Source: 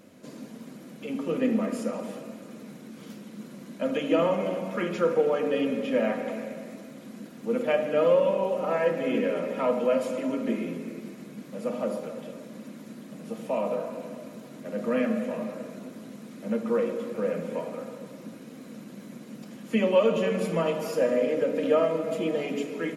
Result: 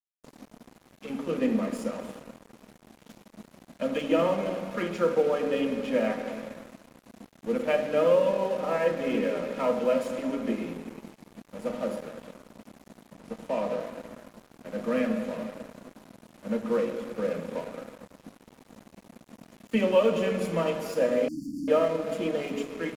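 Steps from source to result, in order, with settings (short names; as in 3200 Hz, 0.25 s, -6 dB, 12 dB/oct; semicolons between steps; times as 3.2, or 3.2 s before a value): crossover distortion -42 dBFS; 13.14–13.8 high shelf 10000 Hz -6.5 dB; 21.28–21.68 brick-wall FIR band-stop 340–4400 Hz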